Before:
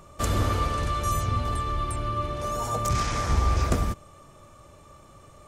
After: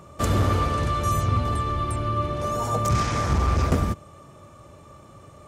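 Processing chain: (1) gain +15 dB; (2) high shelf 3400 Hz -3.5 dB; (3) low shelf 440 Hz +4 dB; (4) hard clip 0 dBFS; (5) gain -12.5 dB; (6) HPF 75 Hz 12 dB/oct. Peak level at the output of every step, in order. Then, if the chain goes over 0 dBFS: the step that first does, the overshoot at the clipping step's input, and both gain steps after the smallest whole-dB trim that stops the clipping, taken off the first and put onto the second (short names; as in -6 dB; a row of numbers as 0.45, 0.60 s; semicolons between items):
+7.0, +6.0, +7.5, 0.0, -12.5, -9.5 dBFS; step 1, 7.5 dB; step 1 +7 dB, step 5 -4.5 dB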